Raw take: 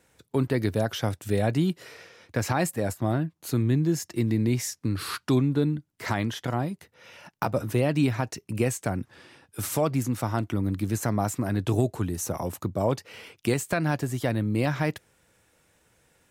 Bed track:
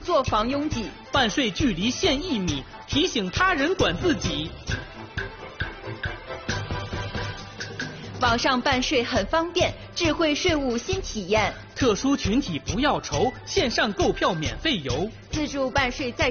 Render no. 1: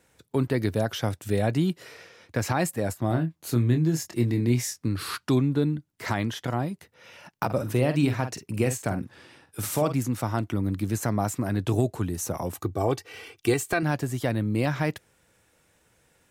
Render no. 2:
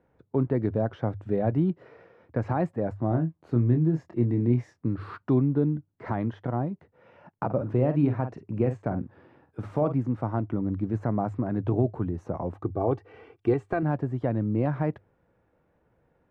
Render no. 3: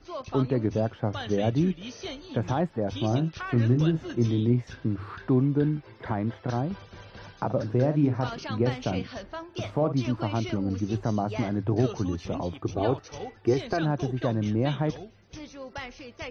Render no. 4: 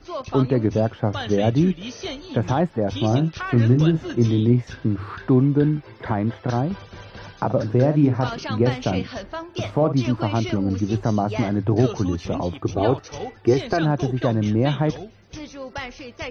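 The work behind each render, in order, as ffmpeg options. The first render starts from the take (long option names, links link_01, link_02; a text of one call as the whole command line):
ffmpeg -i in.wav -filter_complex "[0:a]asettb=1/sr,asplit=3[link_01][link_02][link_03];[link_01]atrim=end=3.084[link_04];[link_02]atrim=start=3.08:end=4.88,asetpts=PTS-STARTPTS,afade=type=in:duration=0.004:curve=qsin,afade=type=out:start_time=1.796:duration=0.004:curve=qsin,asplit=2[link_05][link_06];[link_06]adelay=25,volume=-7dB[link_07];[link_05][link_07]amix=inputs=2:normalize=0,atrim=end_sample=79380[link_08];[link_03]atrim=start=4.876[link_09];[link_04][link_08]acrossfade=duration=0.004:curve1=hsin:curve2=qsin[link_10];[link_10][link_09]acrossfade=duration=0.004:curve1=qsin:curve2=hsin,asettb=1/sr,asplit=3[link_11][link_12][link_13];[link_11]atrim=end=7.454[link_14];[link_12]atrim=start=7.45:end=9.94,asetpts=PTS-STARTPTS,afade=type=in:duration=0.004:curve=qsin,afade=type=out:start_time=2.486:duration=0.004:curve=qsin,asplit=2[link_15][link_16];[link_16]adelay=48,volume=-9.5dB[link_17];[link_15][link_17]amix=inputs=2:normalize=0,atrim=end_sample=109809[link_18];[link_13]atrim=start=9.936[link_19];[link_14][link_18]acrossfade=duration=0.004:curve1=hsin:curve2=qsin[link_20];[link_20][link_19]acrossfade=duration=0.004:curve1=qsin:curve2=hsin,asettb=1/sr,asplit=3[link_21][link_22][link_23];[link_21]atrim=end=12.554[link_24];[link_22]atrim=start=12.55:end=13.83,asetpts=PTS-STARTPTS,afade=type=in:duration=0.004:curve=qsin,afade=type=out:start_time=1.276:duration=0.004:curve=qsin,aecho=1:1:2.6:0.65,atrim=end_sample=56448[link_25];[link_23]atrim=start=13.826[link_26];[link_24][link_25]acrossfade=duration=0.004:curve1=hsin:curve2=qsin[link_27];[link_27][link_26]acrossfade=duration=0.004:curve1=qsin:curve2=hsin" out.wav
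ffmpeg -i in.wav -af "lowpass=1000,bandreject=frequency=50:width_type=h:width=6,bandreject=frequency=100:width_type=h:width=6" out.wav
ffmpeg -i in.wav -i bed.wav -filter_complex "[1:a]volume=-15.5dB[link_01];[0:a][link_01]amix=inputs=2:normalize=0" out.wav
ffmpeg -i in.wav -af "volume=6dB" out.wav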